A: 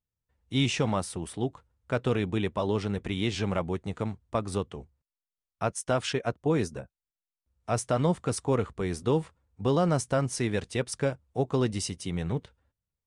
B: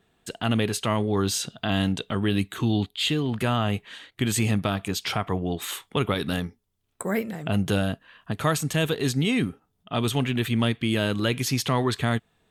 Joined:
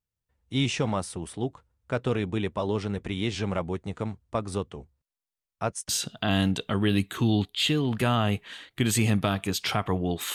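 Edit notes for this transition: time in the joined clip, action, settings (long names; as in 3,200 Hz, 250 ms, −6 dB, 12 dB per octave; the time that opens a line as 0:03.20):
A
0:05.89: continue with B from 0:01.30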